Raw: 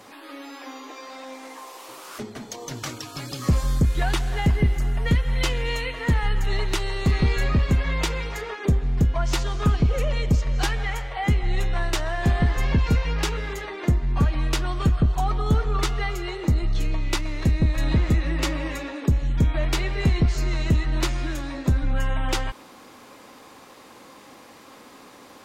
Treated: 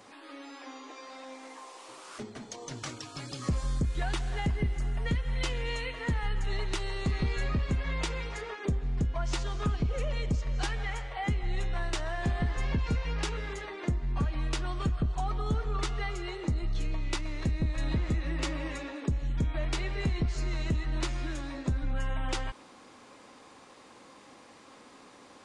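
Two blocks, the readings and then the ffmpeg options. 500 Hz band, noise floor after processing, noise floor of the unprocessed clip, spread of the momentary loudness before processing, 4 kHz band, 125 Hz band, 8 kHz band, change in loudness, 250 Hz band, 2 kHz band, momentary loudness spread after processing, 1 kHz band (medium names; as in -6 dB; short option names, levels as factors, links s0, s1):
-7.5 dB, -54 dBFS, -47 dBFS, 14 LU, -8.0 dB, -9.0 dB, -8.0 dB, -8.5 dB, -8.5 dB, -7.5 dB, 15 LU, -7.5 dB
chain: -af "acompressor=threshold=0.0891:ratio=2,aresample=22050,aresample=44100,volume=0.473"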